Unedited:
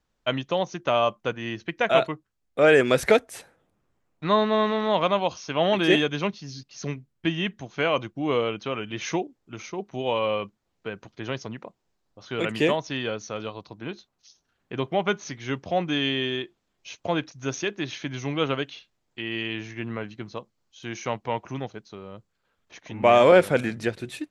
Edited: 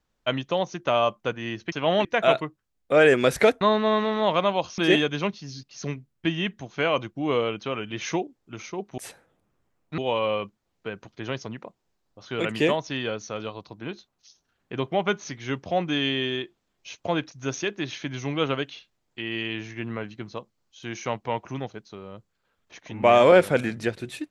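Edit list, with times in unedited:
3.28–4.28 s: move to 9.98 s
5.45–5.78 s: move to 1.72 s

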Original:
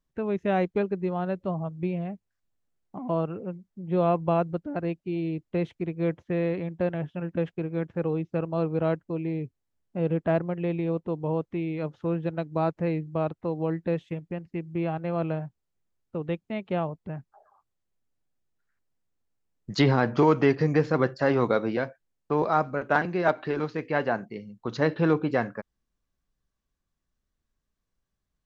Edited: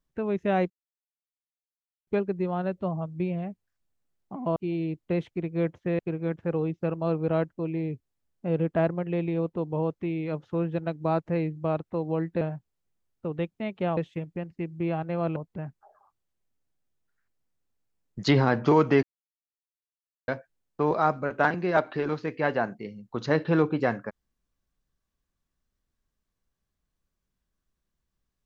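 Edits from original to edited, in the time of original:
0.70 s: insert silence 1.37 s
3.19–5.00 s: delete
6.43–7.50 s: delete
13.92–15.31 s: move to 16.87 s
20.54–21.79 s: mute

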